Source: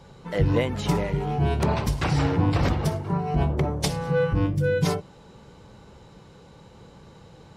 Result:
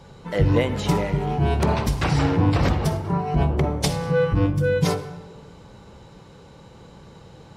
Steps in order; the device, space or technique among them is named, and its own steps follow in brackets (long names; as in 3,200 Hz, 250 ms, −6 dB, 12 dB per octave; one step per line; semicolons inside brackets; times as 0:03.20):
saturated reverb return (on a send at −10.5 dB: convolution reverb RT60 1.2 s, pre-delay 43 ms + soft clipping −19 dBFS, distortion −14 dB)
on the sum: level +2.5 dB